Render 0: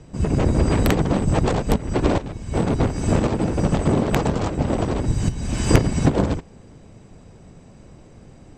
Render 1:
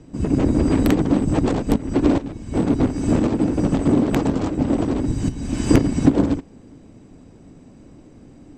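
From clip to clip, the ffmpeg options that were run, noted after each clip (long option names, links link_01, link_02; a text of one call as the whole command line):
ffmpeg -i in.wav -af "equalizer=frequency=280:width_type=o:width=0.64:gain=12,volume=-3.5dB" out.wav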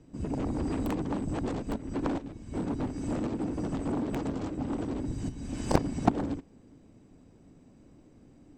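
ffmpeg -i in.wav -af "aeval=exprs='0.891*(cos(1*acos(clip(val(0)/0.891,-1,1)))-cos(1*PI/2))+0.447*(cos(3*acos(clip(val(0)/0.891,-1,1)))-cos(3*PI/2))':channel_layout=same,volume=-5dB" out.wav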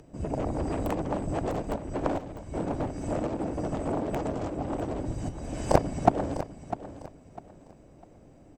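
ffmpeg -i in.wav -af "equalizer=frequency=250:width_type=o:width=0.67:gain=-6,equalizer=frequency=630:width_type=o:width=0.67:gain=8,equalizer=frequency=4000:width_type=o:width=0.67:gain=-4,acompressor=mode=upward:threshold=-52dB:ratio=2.5,aecho=1:1:651|1302|1953:0.237|0.0664|0.0186,volume=2dB" out.wav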